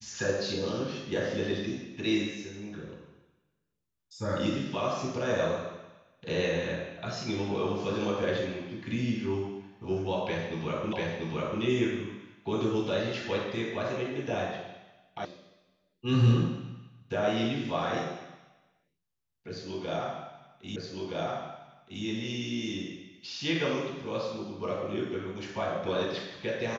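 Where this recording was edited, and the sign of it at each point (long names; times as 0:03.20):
0:10.93: the same again, the last 0.69 s
0:15.25: cut off before it has died away
0:20.76: the same again, the last 1.27 s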